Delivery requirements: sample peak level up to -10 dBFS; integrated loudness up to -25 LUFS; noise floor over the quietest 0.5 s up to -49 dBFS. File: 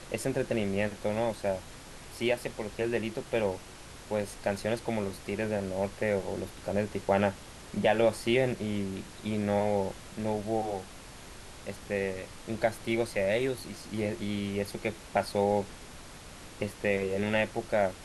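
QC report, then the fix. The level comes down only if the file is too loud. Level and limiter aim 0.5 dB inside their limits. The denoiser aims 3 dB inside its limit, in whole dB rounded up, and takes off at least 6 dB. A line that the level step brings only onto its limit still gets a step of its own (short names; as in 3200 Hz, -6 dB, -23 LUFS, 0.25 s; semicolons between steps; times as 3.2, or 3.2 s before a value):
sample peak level -12.5 dBFS: OK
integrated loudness -31.5 LUFS: OK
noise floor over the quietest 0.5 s -47 dBFS: fail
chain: denoiser 6 dB, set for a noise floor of -47 dBFS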